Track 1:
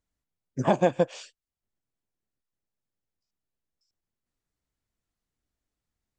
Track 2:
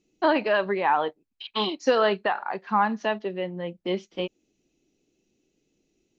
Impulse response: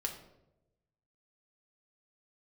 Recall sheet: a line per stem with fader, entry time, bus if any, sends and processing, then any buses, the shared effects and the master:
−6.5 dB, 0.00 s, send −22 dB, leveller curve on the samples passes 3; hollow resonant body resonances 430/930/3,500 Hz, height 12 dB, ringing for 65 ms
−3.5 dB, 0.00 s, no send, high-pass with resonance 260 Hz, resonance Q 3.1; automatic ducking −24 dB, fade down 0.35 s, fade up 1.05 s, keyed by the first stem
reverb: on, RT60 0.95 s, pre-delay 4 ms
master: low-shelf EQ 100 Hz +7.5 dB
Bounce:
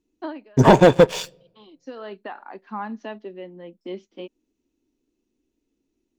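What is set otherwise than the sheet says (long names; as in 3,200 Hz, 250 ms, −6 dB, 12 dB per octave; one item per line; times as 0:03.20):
stem 1 −6.5 dB → +2.0 dB
stem 2 −3.5 dB → −10.5 dB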